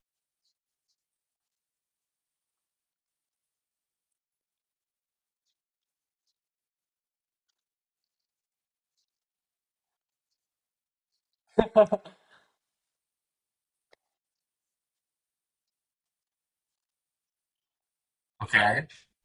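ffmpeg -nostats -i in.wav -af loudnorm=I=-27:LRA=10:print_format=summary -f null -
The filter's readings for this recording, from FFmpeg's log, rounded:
Input Integrated:    -24.6 LUFS
Input True Peak:      -4.5 dBTP
Input LRA:             0.7 LU
Input Threshold:     -36.9 LUFS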